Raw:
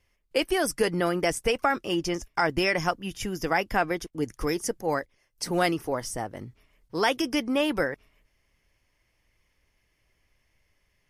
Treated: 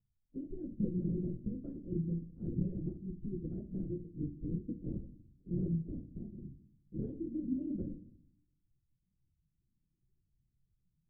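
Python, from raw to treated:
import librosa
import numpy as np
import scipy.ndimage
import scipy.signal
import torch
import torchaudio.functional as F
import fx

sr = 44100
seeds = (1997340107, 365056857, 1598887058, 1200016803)

y = fx.spec_quant(x, sr, step_db=30)
y = scipy.signal.sosfilt(scipy.signal.cheby2(4, 60, 850.0, 'lowpass', fs=sr, output='sos'), y)
y = fx.low_shelf(y, sr, hz=92.0, db=-11.5)
y = fx.room_early_taps(y, sr, ms=(23, 43), db=(-9.5, -8.5))
y = fx.lpc_vocoder(y, sr, seeds[0], excitation='whisper', order=16)
y = fx.room_shoebox(y, sr, seeds[1], volume_m3=950.0, walls='furnished', distance_m=0.81)
y = y * librosa.db_to_amplitude(-2.0)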